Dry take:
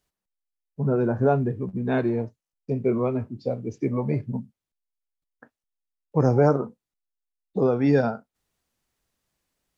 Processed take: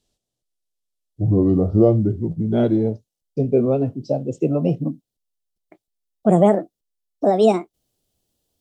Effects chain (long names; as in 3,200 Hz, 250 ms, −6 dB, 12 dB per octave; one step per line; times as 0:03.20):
gliding playback speed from 58% → 169%
flat-topped bell 1,500 Hz −12.5 dB
level +6 dB